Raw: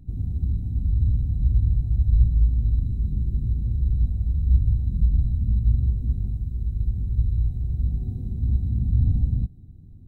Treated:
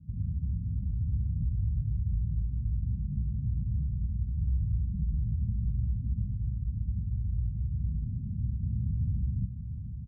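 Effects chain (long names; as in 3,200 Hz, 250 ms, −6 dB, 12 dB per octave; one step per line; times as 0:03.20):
high-pass filter 52 Hz 24 dB per octave
brickwall limiter −20 dBFS, peak gain reduction 11 dB
transistor ladder low-pass 220 Hz, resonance 40%
slap from a distant wall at 120 metres, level −8 dB
level +2.5 dB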